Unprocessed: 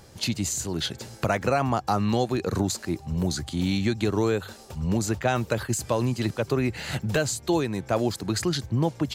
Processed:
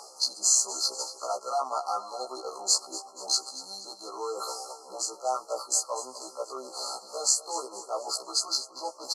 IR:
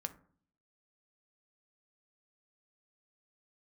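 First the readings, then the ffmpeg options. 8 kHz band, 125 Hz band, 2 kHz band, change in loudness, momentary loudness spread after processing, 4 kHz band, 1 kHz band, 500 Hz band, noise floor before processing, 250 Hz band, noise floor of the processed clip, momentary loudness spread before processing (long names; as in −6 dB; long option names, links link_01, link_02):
+6.5 dB, below −40 dB, below −25 dB, −2.5 dB, 13 LU, +3.0 dB, −2.5 dB, −8.5 dB, −48 dBFS, −25.0 dB, −50 dBFS, 5 LU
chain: -filter_complex "[0:a]asplit=2[link_01][link_02];[link_02]adynamicsmooth=sensitivity=8:basefreq=1600,volume=1dB[link_03];[link_01][link_03]amix=inputs=2:normalize=0,lowpass=frequency=10000:width=0.5412,lowpass=frequency=10000:width=1.3066,areverse,acompressor=threshold=-29dB:ratio=20,areverse,tiltshelf=frequency=860:gain=-4.5,afftfilt=real='re*(1-between(b*sr/4096,1400,4100))':imag='im*(1-between(b*sr/4096,1400,4100))':win_size=4096:overlap=0.75,highpass=frequency=520:width=0.5412,highpass=frequency=520:width=1.3066,highshelf=frequency=4800:gain=4.5,aecho=1:1:241|482|723|964|1205:0.178|0.0871|0.0427|0.0209|0.0103,afftfilt=real='re*1.73*eq(mod(b,3),0)':imag='im*1.73*eq(mod(b,3),0)':win_size=2048:overlap=0.75,volume=8.5dB"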